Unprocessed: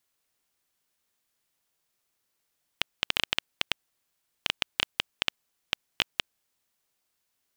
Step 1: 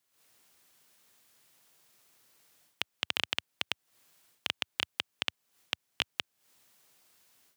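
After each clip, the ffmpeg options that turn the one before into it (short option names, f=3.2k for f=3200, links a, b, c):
-af "highpass=f=87:w=0.5412,highpass=f=87:w=1.3066,dynaudnorm=f=110:g=3:m=14dB,alimiter=limit=-7.5dB:level=0:latency=1:release=298,volume=-1.5dB"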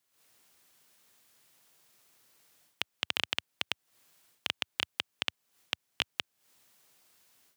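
-af anull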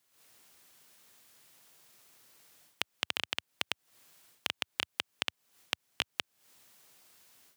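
-af "acompressor=threshold=-32dB:ratio=6,volume=4dB"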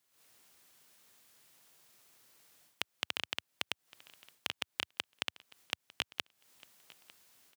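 -af "aecho=1:1:901|1802:0.0794|0.0167,volume=-3dB"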